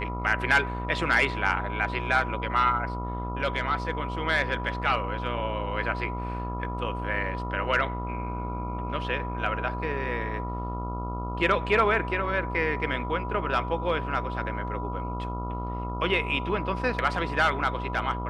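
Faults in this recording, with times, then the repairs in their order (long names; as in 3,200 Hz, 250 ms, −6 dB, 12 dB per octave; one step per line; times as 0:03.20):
mains buzz 60 Hz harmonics 23 −33 dBFS
whistle 980 Hz −35 dBFS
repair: notch filter 980 Hz, Q 30
hum removal 60 Hz, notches 23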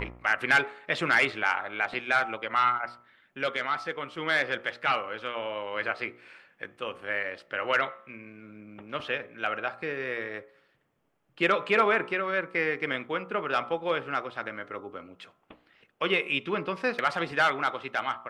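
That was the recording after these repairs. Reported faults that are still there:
none of them is left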